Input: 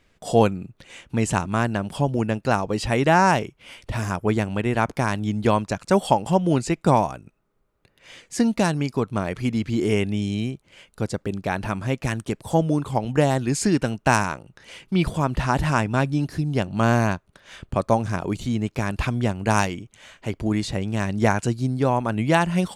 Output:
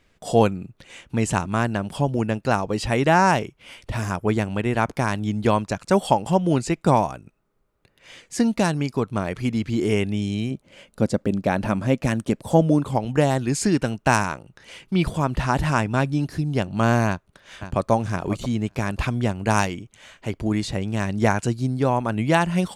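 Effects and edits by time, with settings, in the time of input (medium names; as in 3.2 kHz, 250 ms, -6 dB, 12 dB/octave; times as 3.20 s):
10.50–12.95 s: small resonant body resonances 230/550 Hz, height 9 dB -> 6 dB, ringing for 20 ms
17.07–17.91 s: echo throw 540 ms, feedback 20%, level -11 dB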